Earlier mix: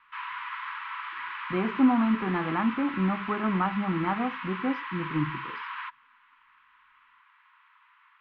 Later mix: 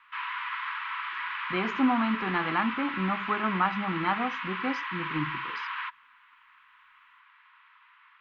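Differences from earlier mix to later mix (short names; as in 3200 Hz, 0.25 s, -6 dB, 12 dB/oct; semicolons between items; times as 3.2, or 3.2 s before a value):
speech: remove air absorption 230 m; master: add tilt shelf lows -5 dB, about 830 Hz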